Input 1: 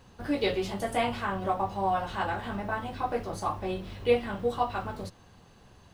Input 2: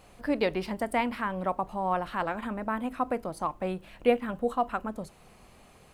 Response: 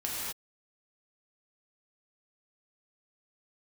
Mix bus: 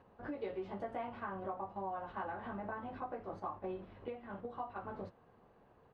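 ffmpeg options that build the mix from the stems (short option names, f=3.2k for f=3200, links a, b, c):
-filter_complex "[0:a]acompressor=threshold=-36dB:ratio=6,volume=-1.5dB[a];[1:a]lowpass=1.4k,equalizer=f=460:w=6.3:g=8.5,acompressor=threshold=-36dB:ratio=5,volume=-1,adelay=21,volume=-10dB,asplit=2[b][c];[c]apad=whole_len=261918[d];[a][d]sidechaingate=range=-6dB:threshold=-56dB:ratio=16:detection=peak[e];[e][b]amix=inputs=2:normalize=0,lowpass=1.5k,lowshelf=f=140:g=-12"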